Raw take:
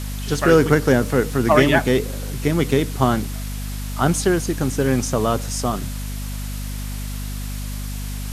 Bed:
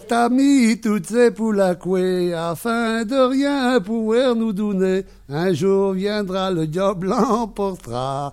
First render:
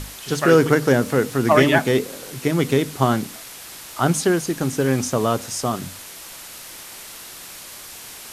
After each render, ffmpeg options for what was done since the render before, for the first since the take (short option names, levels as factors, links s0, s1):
-af "bandreject=f=50:t=h:w=6,bandreject=f=100:t=h:w=6,bandreject=f=150:t=h:w=6,bandreject=f=200:t=h:w=6,bandreject=f=250:t=h:w=6"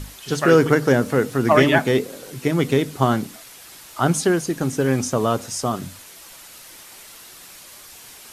-af "afftdn=nr=6:nf=-39"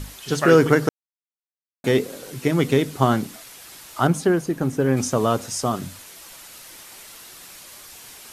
-filter_complex "[0:a]asettb=1/sr,asplit=3[s0][s1][s2];[s0]atrim=end=4.074[s3];[s1]atrim=start=4.07:end=4.97,asetpts=PTS-STARTPTS,afade=t=in:d=0.004:c=qsin,afade=t=out:st=0.896:d=0.004:c=qsin,equalizer=f=6500:w=0.37:g=-9[s4];[s2]atrim=start=4.966[s5];[s3][s4]acrossfade=d=0.004:c1=hsin:c2=qsin[s6];[s6][s5]acrossfade=d=0.004:c1=qsin:c2=hsin,asplit=3[s7][s8][s9];[s7]atrim=end=0.89,asetpts=PTS-STARTPTS,afade=t=out:st=0.886:d=0.004:c=hsin[s10];[s8]atrim=start=0.89:end=1.84,asetpts=PTS-STARTPTS,volume=0[s11];[s9]atrim=start=1.84,asetpts=PTS-STARTPTS,afade=t=in:d=0.004:c=hsin[s12];[s10][s11][s12]concat=n=3:v=0:a=1"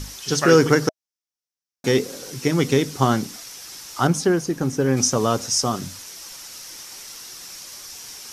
-af "equalizer=f=5600:t=o:w=0.53:g=12,bandreject=f=640:w=12"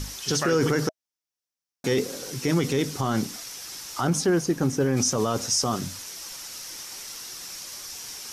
-af "alimiter=limit=0.2:level=0:latency=1:release=15"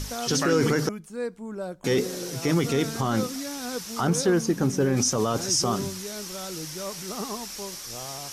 -filter_complex "[1:a]volume=0.15[s0];[0:a][s0]amix=inputs=2:normalize=0"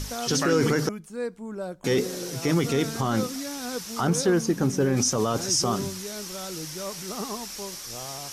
-af anull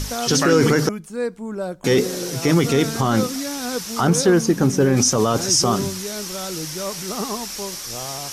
-af "volume=2.11"